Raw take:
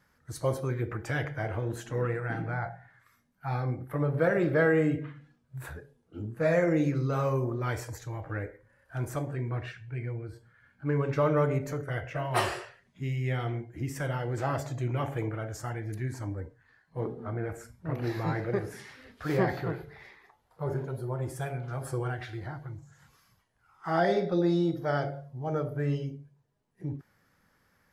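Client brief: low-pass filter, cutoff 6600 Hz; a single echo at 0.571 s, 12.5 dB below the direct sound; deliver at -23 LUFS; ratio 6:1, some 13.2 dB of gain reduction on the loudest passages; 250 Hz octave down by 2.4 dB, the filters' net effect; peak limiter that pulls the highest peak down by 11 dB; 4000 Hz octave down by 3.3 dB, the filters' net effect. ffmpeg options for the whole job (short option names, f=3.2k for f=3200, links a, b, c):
-af "lowpass=6.6k,equalizer=f=250:t=o:g=-4,equalizer=f=4k:t=o:g=-4,acompressor=threshold=-36dB:ratio=6,alimiter=level_in=11dB:limit=-24dB:level=0:latency=1,volume=-11dB,aecho=1:1:571:0.237,volume=21.5dB"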